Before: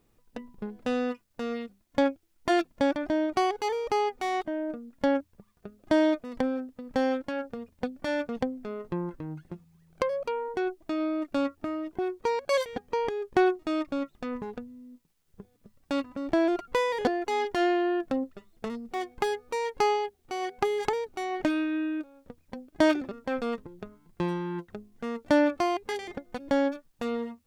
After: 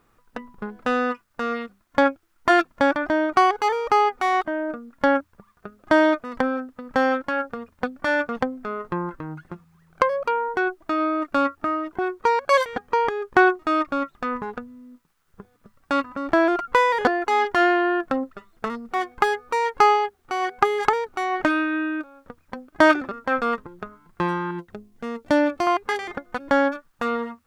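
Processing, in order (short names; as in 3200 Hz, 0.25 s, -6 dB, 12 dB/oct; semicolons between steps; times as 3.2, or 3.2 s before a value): bell 1300 Hz +14 dB 1.2 oct, from 24.51 s +2 dB, from 25.67 s +14 dB; gain +2.5 dB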